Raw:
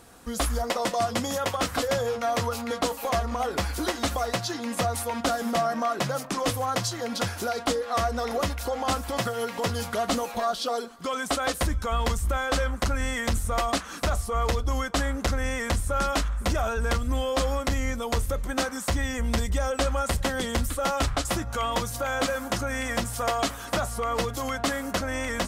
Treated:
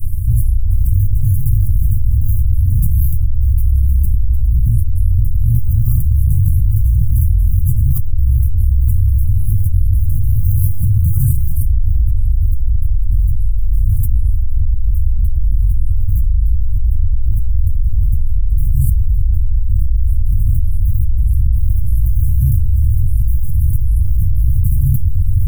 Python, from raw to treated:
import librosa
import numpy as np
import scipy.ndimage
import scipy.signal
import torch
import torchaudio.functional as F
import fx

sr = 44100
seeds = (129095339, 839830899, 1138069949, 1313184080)

p1 = fx.octave_divider(x, sr, octaves=1, level_db=3.0)
p2 = fx.sample_hold(p1, sr, seeds[0], rate_hz=7900.0, jitter_pct=0)
p3 = p1 + F.gain(torch.from_numpy(p2), -3.5).numpy()
p4 = scipy.signal.sosfilt(scipy.signal.cheby2(4, 60, [300.0, 4600.0], 'bandstop', fs=sr, output='sos'), p3)
p5 = fx.bass_treble(p4, sr, bass_db=0, treble_db=-9)
p6 = fx.echo_banded(p5, sr, ms=439, feedback_pct=72, hz=830.0, wet_db=-11.0)
p7 = fx.room_shoebox(p6, sr, seeds[1], volume_m3=61.0, walls='mixed', distance_m=1.0)
p8 = fx.rider(p7, sr, range_db=4, speed_s=2.0)
p9 = fx.low_shelf(p8, sr, hz=100.0, db=9.5, at=(4.14, 5.55))
p10 = fx.env_flatten(p9, sr, amount_pct=100)
y = F.gain(torch.from_numpy(p10), -12.0).numpy()